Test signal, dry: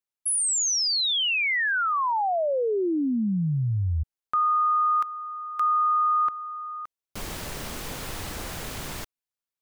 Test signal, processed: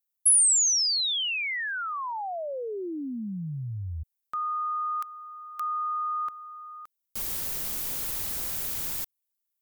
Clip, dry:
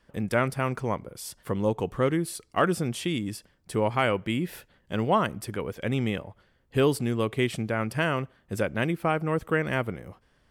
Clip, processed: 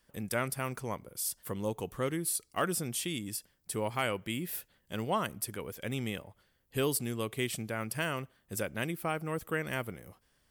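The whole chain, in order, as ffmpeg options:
-af "aemphasis=mode=production:type=75fm,volume=0.398"

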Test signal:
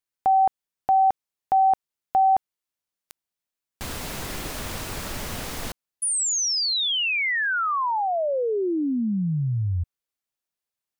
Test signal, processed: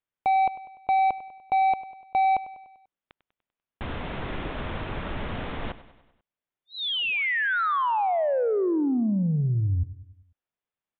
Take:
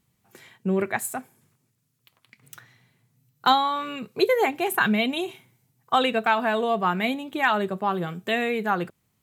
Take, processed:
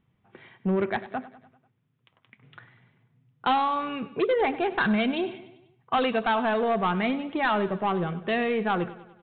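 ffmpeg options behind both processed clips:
-af "aemphasis=mode=reproduction:type=75kf,aresample=8000,asoftclip=type=tanh:threshold=0.0944,aresample=44100,aecho=1:1:98|196|294|392|490:0.158|0.0856|0.0462|0.025|0.0135,volume=1.26"

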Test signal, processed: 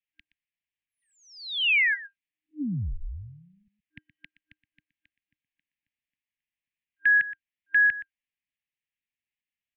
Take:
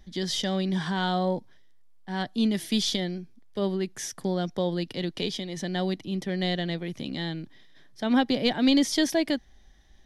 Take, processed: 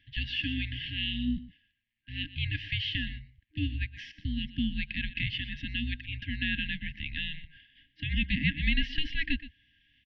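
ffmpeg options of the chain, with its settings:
-filter_complex "[0:a]aecho=1:1:121:0.15,acrossover=split=300|2200[s0][s1][s2];[s0]acompressor=threshold=0.01:ratio=6[s3];[s2]alimiter=level_in=1.26:limit=0.0631:level=0:latency=1:release=168,volume=0.794[s4];[s3][s1][s4]amix=inputs=3:normalize=0,aexciter=amount=3.1:drive=4.3:freq=2200,highpass=f=220:t=q:w=0.5412,highpass=f=220:t=q:w=1.307,lowpass=f=3200:t=q:w=0.5176,lowpass=f=3200:t=q:w=0.7071,lowpass=f=3200:t=q:w=1.932,afreqshift=-310,afftfilt=real='re*(1-between(b*sr/4096,310,1600))':imag='im*(1-between(b*sr/4096,310,1600))':win_size=4096:overlap=0.75"

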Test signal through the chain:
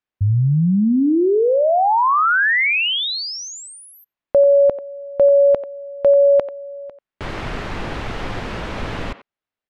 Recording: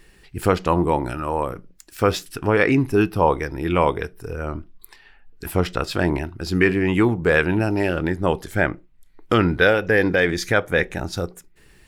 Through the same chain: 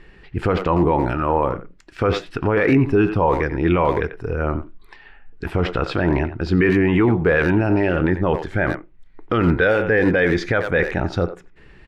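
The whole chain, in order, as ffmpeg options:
-filter_complex "[0:a]lowpass=2600,asplit=2[s0][s1];[s1]adelay=90,highpass=300,lowpass=3400,asoftclip=type=hard:threshold=0.282,volume=0.224[s2];[s0][s2]amix=inputs=2:normalize=0,alimiter=limit=0.211:level=0:latency=1:release=14,volume=2"

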